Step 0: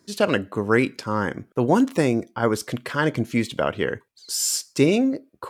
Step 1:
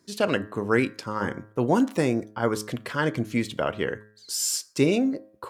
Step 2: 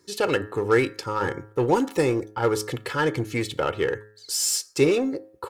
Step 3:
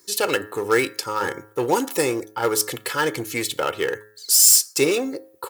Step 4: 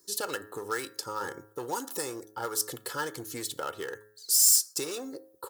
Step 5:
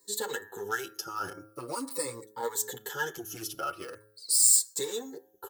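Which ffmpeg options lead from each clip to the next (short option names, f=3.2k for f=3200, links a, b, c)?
-af "bandreject=f=106.3:t=h:w=4,bandreject=f=212.6:t=h:w=4,bandreject=f=318.9:t=h:w=4,bandreject=f=425.2:t=h:w=4,bandreject=f=531.5:t=h:w=4,bandreject=f=637.8:t=h:w=4,bandreject=f=744.1:t=h:w=4,bandreject=f=850.4:t=h:w=4,bandreject=f=956.7:t=h:w=4,bandreject=f=1.063k:t=h:w=4,bandreject=f=1.1693k:t=h:w=4,bandreject=f=1.2756k:t=h:w=4,bandreject=f=1.3819k:t=h:w=4,bandreject=f=1.4882k:t=h:w=4,bandreject=f=1.5945k:t=h:w=4,bandreject=f=1.7008k:t=h:w=4,bandreject=f=1.8071k:t=h:w=4,bandreject=f=1.9134k:t=h:w=4,volume=-3dB"
-filter_complex "[0:a]aecho=1:1:2.3:0.69,asplit=2[a][b];[b]aeval=exprs='0.0596*(abs(mod(val(0)/0.0596+3,4)-2)-1)':c=same,volume=-11.5dB[c];[a][c]amix=inputs=2:normalize=0"
-af "aemphasis=mode=production:type=bsi,volume=2dB"
-filter_complex "[0:a]acrossover=split=850|3200[a][b][c];[a]acompressor=threshold=-29dB:ratio=6[d];[b]lowpass=f=1.8k:w=0.5412,lowpass=f=1.8k:w=1.3066[e];[d][e][c]amix=inputs=3:normalize=0,volume=-7dB"
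-filter_complex "[0:a]afftfilt=real='re*pow(10,14/40*sin(2*PI*(0.99*log(max(b,1)*sr/1024/100)/log(2)-(-0.43)*(pts-256)/sr)))':imag='im*pow(10,14/40*sin(2*PI*(0.99*log(max(b,1)*sr/1024/100)/log(2)-(-0.43)*(pts-256)/sr)))':win_size=1024:overlap=0.75,asplit=2[a][b];[b]adelay=7.7,afreqshift=1.5[c];[a][c]amix=inputs=2:normalize=1"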